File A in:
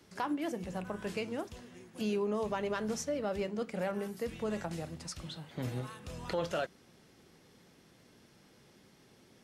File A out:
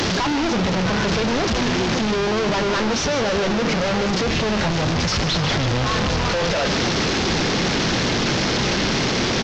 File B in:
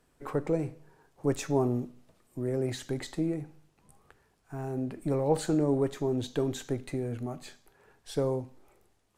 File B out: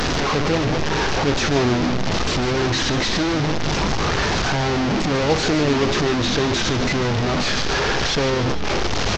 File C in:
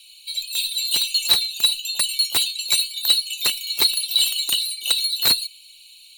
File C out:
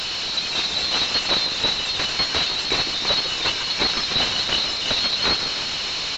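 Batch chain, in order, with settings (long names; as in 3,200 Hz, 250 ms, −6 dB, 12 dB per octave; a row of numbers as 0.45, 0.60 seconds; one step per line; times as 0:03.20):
linear delta modulator 32 kbit/s, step −21 dBFS
echo with shifted repeats 150 ms, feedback 60%, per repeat −53 Hz, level −10 dB
loudness normalisation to −20 LKFS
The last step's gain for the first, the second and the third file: +6.5, +6.5, +0.5 decibels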